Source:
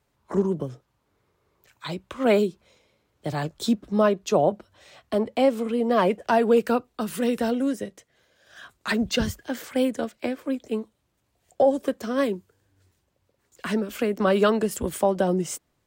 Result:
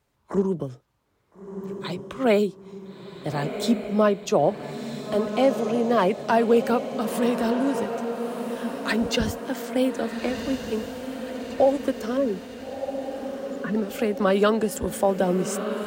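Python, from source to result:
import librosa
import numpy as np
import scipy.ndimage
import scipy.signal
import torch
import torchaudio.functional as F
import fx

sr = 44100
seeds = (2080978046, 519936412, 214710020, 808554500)

y = fx.spec_expand(x, sr, power=2.3, at=(12.17, 13.75))
y = fx.echo_diffused(y, sr, ms=1368, feedback_pct=56, wet_db=-8.0)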